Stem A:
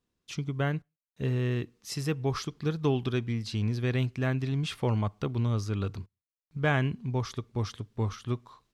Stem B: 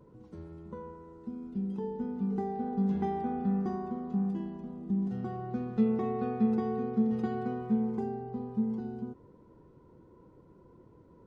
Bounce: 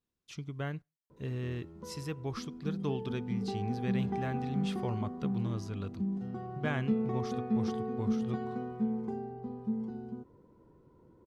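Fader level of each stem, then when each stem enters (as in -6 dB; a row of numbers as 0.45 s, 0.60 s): -8.0 dB, -3.5 dB; 0.00 s, 1.10 s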